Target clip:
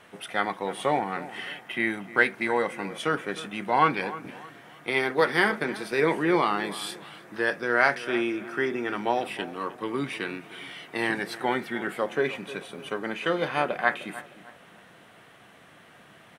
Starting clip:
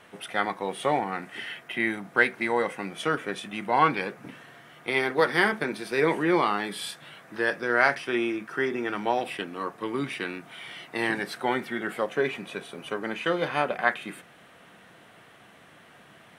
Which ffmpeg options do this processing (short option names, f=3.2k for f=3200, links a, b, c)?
-filter_complex "[0:a]asplit=2[a][b];[b]adelay=307,lowpass=f=2.2k:p=1,volume=-15.5dB,asplit=2[c][d];[d]adelay=307,lowpass=f=2.2k:p=1,volume=0.37,asplit=2[e][f];[f]adelay=307,lowpass=f=2.2k:p=1,volume=0.37[g];[a][c][e][g]amix=inputs=4:normalize=0"